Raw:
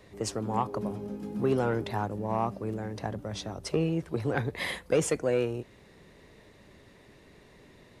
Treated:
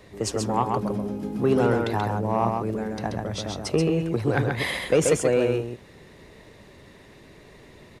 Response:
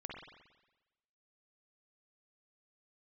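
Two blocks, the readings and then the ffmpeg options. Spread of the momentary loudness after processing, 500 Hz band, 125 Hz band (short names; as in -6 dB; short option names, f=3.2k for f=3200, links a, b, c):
9 LU, +6.5 dB, +6.0 dB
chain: -af "aecho=1:1:133:0.631,volume=5dB"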